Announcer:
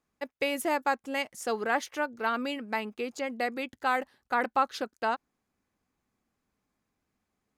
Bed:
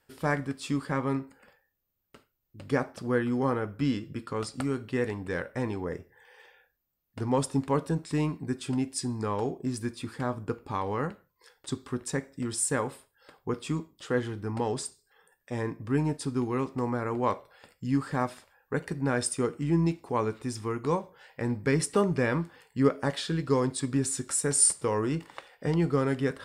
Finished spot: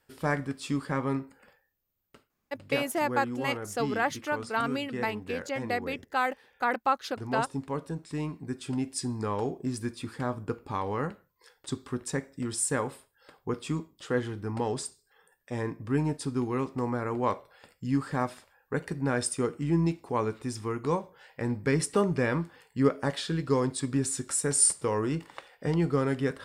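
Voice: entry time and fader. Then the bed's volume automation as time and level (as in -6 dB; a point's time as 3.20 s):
2.30 s, 0.0 dB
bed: 2.07 s -0.5 dB
2.38 s -6.5 dB
8.00 s -6.5 dB
9.01 s -0.5 dB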